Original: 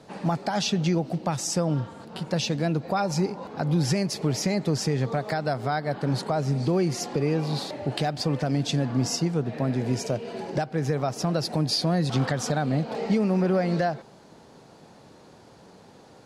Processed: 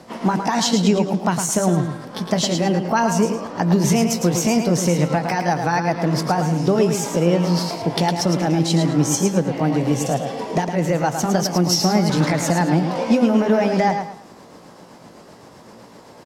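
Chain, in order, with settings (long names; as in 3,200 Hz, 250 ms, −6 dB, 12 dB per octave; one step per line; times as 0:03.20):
pitch shift by two crossfaded delay taps +2.5 semitones
repeating echo 109 ms, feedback 29%, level −7 dB
level +7.5 dB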